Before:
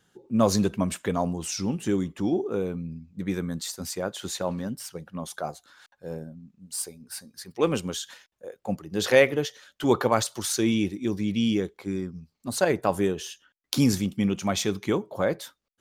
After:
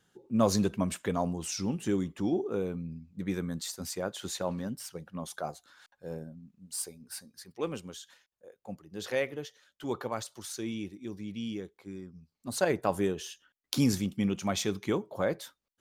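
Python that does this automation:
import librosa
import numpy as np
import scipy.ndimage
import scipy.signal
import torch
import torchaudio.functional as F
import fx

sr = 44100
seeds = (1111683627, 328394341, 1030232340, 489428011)

y = fx.gain(x, sr, db=fx.line((7.15, -4.0), (7.82, -12.5), (12.05, -12.5), (12.57, -4.5)))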